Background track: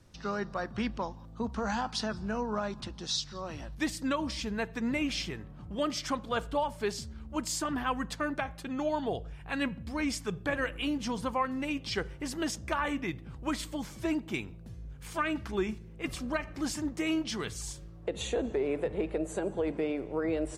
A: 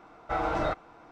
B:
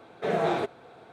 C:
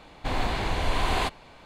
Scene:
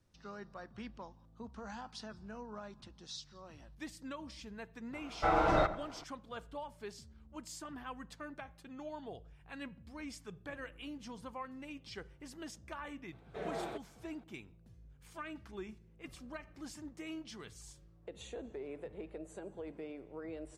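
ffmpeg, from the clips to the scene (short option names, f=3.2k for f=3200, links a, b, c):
-filter_complex "[0:a]volume=-14dB[a];[1:a]asplit=2[b][c];[c]adelay=87,lowpass=f=1.8k:p=1,volume=-12.5dB,asplit=2[d][e];[e]adelay=87,lowpass=f=1.8k:p=1,volume=0.49,asplit=2[f][g];[g]adelay=87,lowpass=f=1.8k:p=1,volume=0.49,asplit=2[h][i];[i]adelay=87,lowpass=f=1.8k:p=1,volume=0.49,asplit=2[j][k];[k]adelay=87,lowpass=f=1.8k:p=1,volume=0.49[l];[b][d][f][h][j][l]amix=inputs=6:normalize=0[m];[2:a]aresample=32000,aresample=44100[n];[m]atrim=end=1.11,asetpts=PTS-STARTPTS,afade=t=in:d=0.004:c=hsin,afade=t=out:st=1.106:d=0.004:c=hsin,adelay=217413S[o];[n]atrim=end=1.12,asetpts=PTS-STARTPTS,volume=-14.5dB,afade=t=in:d=0.004:c=hsin,afade=t=out:st=1.116:d=0.004:c=hsin,adelay=13120[p];[a][o][p]amix=inputs=3:normalize=0"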